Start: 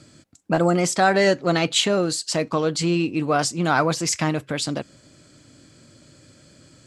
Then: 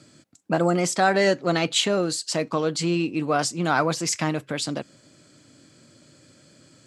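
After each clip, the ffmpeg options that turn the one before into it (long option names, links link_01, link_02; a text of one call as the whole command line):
ffmpeg -i in.wav -af "highpass=120,volume=-2dB" out.wav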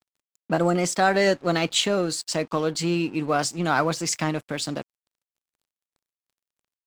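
ffmpeg -i in.wav -af "aeval=exprs='sgn(val(0))*max(abs(val(0))-0.00596,0)':channel_layout=same" out.wav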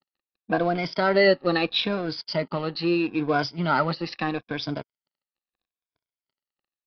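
ffmpeg -i in.wav -filter_complex "[0:a]afftfilt=real='re*pow(10,14/40*sin(2*PI*(1.7*log(max(b,1)*sr/1024/100)/log(2)-(-0.77)*(pts-256)/sr)))':imag='im*pow(10,14/40*sin(2*PI*(1.7*log(max(b,1)*sr/1024/100)/log(2)-(-0.77)*(pts-256)/sr)))':win_size=1024:overlap=0.75,asplit=2[link_01][link_02];[link_02]acrusher=bits=3:mix=0:aa=0.5,volume=-11.5dB[link_03];[link_01][link_03]amix=inputs=2:normalize=0,aresample=11025,aresample=44100,volume=-5dB" out.wav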